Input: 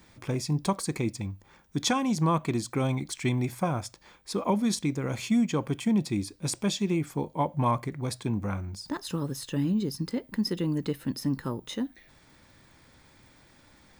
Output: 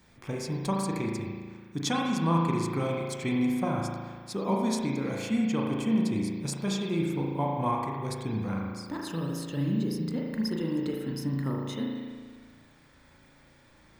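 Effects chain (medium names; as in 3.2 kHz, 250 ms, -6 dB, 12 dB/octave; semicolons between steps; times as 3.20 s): spring tank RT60 1.6 s, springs 36 ms, chirp 80 ms, DRR -2 dB; trim -4.5 dB; Vorbis 192 kbps 44.1 kHz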